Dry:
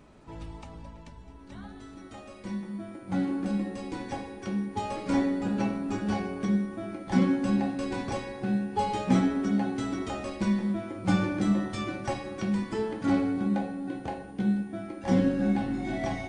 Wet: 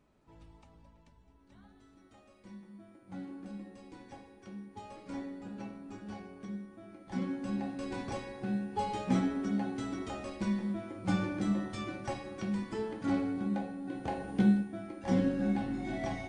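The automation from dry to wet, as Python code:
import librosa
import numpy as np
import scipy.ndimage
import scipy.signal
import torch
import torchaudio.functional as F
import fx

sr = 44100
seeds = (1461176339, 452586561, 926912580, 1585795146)

y = fx.gain(x, sr, db=fx.line((6.82, -15.0), (7.96, -6.0), (13.84, -6.0), (14.37, 4.0), (14.74, -5.0)))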